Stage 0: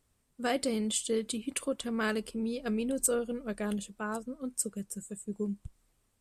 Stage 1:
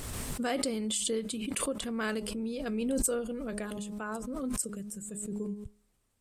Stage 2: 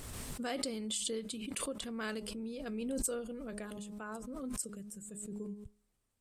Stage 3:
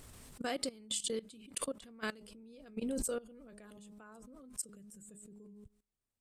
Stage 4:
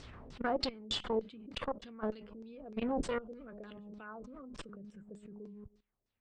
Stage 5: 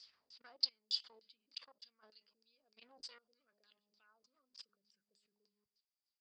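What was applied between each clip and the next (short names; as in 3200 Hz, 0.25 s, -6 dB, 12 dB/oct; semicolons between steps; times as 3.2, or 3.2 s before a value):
de-hum 207.9 Hz, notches 6; backwards sustainer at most 22 dB/s; gain -2 dB
dynamic EQ 4300 Hz, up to +4 dB, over -46 dBFS, Q 1.1; gain -6.5 dB
level quantiser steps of 19 dB; gain +2.5 dB
one-sided clip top -44 dBFS; LFO low-pass saw down 3.3 Hz 420–6000 Hz; air absorption 81 m; gain +4.5 dB
band-pass 4800 Hz, Q 15; gain +11.5 dB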